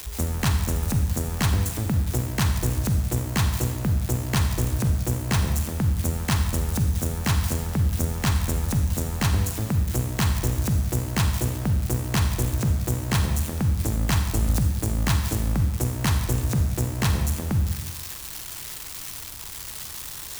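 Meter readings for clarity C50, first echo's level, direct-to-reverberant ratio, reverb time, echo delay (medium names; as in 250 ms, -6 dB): 6.5 dB, no echo, 5.5 dB, 1.1 s, no echo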